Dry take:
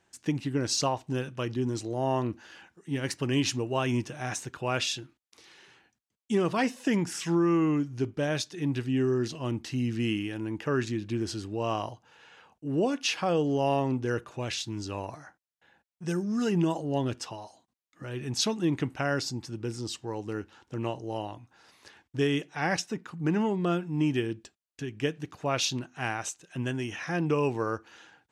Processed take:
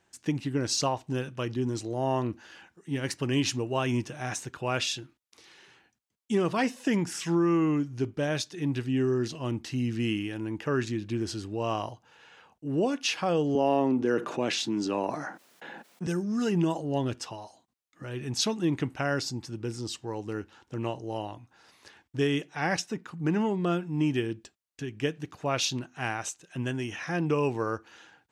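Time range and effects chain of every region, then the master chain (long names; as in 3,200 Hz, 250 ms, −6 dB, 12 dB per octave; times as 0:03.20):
0:13.55–0:16.07: high-pass filter 200 Hz 24 dB per octave + spectral tilt −2 dB per octave + envelope flattener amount 50%
whole clip: no processing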